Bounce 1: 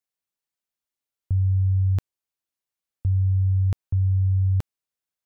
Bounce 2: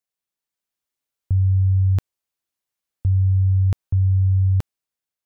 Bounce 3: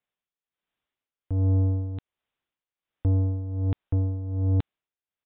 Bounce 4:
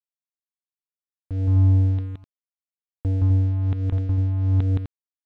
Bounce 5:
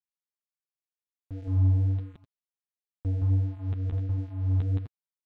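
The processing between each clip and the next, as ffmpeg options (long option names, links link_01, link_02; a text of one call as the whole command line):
ffmpeg -i in.wav -af "dynaudnorm=framelen=170:gausssize=7:maxgain=3.5dB" out.wav
ffmpeg -i in.wav -af "aresample=8000,asoftclip=type=tanh:threshold=-24.5dB,aresample=44100,tremolo=f=1.3:d=0.75,volume=5.5dB" out.wav
ffmpeg -i in.wav -af "aecho=1:1:169.1|253.6:0.891|0.447,aeval=exprs='sgn(val(0))*max(abs(val(0))-0.0075,0)':channel_layout=same" out.wav
ffmpeg -i in.wav -af "flanger=delay=5:depth=8.5:regen=-7:speed=1.4:shape=triangular,volume=-4.5dB" out.wav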